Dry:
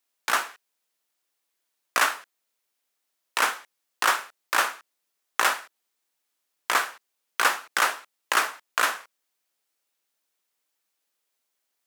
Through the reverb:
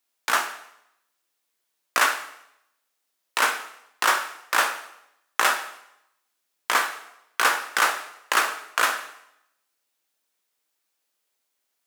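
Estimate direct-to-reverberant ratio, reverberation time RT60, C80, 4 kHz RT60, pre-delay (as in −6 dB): 7.0 dB, 0.80 s, 13.0 dB, 0.75 s, 5 ms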